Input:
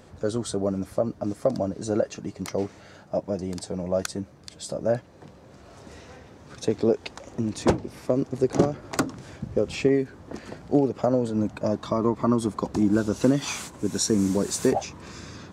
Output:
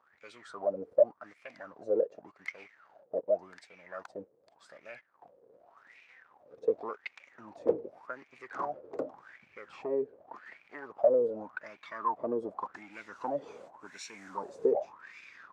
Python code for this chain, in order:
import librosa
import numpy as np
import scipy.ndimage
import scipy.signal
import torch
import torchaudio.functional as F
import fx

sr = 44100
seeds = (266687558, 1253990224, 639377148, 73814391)

y = fx.leveller(x, sr, passes=2)
y = fx.wah_lfo(y, sr, hz=0.87, low_hz=450.0, high_hz=2400.0, q=10.0)